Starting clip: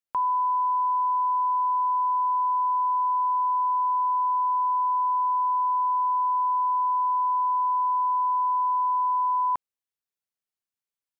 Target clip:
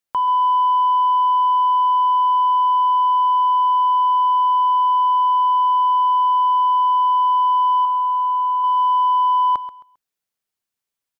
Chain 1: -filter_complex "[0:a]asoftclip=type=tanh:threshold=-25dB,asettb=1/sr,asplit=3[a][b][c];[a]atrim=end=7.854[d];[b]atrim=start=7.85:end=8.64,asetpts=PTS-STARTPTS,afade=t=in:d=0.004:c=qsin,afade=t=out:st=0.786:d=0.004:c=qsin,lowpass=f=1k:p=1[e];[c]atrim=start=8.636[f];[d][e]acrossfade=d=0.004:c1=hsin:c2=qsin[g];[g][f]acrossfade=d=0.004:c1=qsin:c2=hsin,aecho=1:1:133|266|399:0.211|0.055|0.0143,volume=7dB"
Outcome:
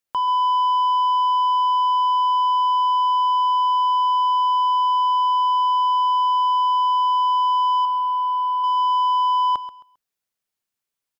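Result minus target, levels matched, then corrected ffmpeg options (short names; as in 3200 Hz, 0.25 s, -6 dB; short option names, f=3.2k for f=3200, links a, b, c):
soft clip: distortion +9 dB
-filter_complex "[0:a]asoftclip=type=tanh:threshold=-19dB,asettb=1/sr,asplit=3[a][b][c];[a]atrim=end=7.854[d];[b]atrim=start=7.85:end=8.64,asetpts=PTS-STARTPTS,afade=t=in:d=0.004:c=qsin,afade=t=out:st=0.786:d=0.004:c=qsin,lowpass=f=1k:p=1[e];[c]atrim=start=8.636[f];[d][e]acrossfade=d=0.004:c1=hsin:c2=qsin[g];[g][f]acrossfade=d=0.004:c1=qsin:c2=hsin,aecho=1:1:133|266|399:0.211|0.055|0.0143,volume=7dB"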